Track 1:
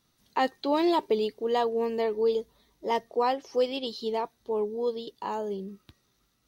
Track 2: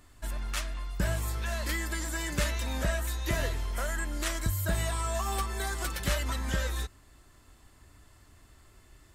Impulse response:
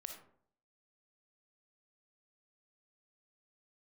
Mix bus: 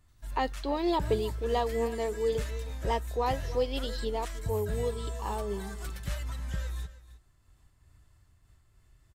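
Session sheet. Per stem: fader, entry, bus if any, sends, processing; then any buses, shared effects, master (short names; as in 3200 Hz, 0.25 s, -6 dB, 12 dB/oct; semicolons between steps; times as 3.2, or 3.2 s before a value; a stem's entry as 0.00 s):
-1.5 dB, 0.00 s, no send, echo send -17 dB, gate with hold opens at -60 dBFS
-9.5 dB, 0.00 s, no send, echo send -15.5 dB, resonant low shelf 190 Hz +7 dB, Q 1.5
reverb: off
echo: echo 0.314 s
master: noise-modulated level, depth 50%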